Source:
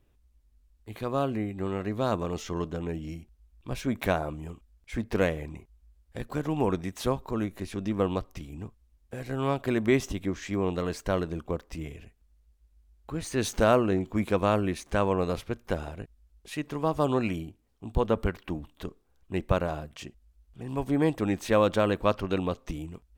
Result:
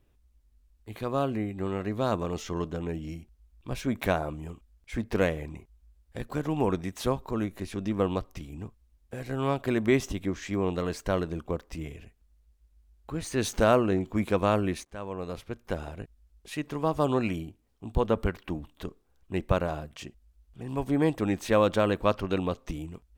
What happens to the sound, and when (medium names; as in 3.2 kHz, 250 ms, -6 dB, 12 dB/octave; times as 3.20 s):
14.85–16.03 s: fade in, from -19 dB